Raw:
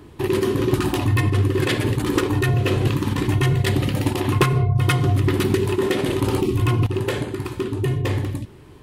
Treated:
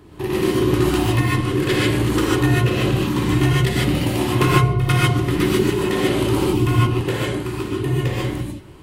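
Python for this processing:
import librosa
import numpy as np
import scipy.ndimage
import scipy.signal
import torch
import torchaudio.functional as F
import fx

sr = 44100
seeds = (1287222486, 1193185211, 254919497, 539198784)

y = fx.rev_gated(x, sr, seeds[0], gate_ms=170, shape='rising', drr_db=-5.0)
y = F.gain(torch.from_numpy(y), -3.0).numpy()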